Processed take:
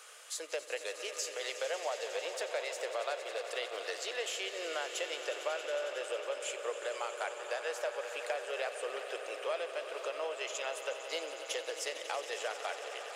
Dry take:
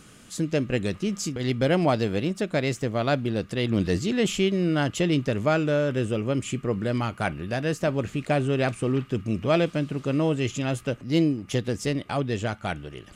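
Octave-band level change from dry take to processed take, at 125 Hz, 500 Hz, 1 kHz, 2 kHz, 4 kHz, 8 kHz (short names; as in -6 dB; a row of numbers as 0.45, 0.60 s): under -40 dB, -10.5 dB, -8.5 dB, -6.5 dB, -5.0 dB, -3.5 dB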